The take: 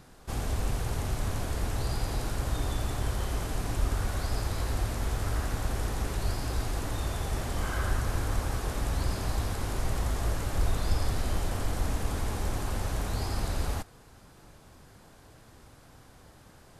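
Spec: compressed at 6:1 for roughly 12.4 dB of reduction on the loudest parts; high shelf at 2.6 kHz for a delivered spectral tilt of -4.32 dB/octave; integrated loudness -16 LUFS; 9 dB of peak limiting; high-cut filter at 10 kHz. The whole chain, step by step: low-pass 10 kHz; treble shelf 2.6 kHz +4 dB; compression 6:1, threshold -35 dBFS; trim +29.5 dB; peak limiter -5 dBFS

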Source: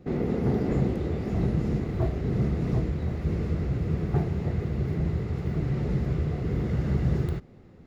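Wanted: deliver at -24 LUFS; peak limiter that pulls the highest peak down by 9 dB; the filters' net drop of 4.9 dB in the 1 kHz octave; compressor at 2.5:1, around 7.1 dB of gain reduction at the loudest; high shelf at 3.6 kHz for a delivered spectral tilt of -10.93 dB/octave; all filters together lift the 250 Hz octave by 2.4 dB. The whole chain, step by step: peaking EQ 250 Hz +4 dB; peaking EQ 1 kHz -8.5 dB; treble shelf 3.6 kHz +6.5 dB; compression 2.5:1, threshold -30 dBFS; trim +12 dB; peak limiter -15.5 dBFS

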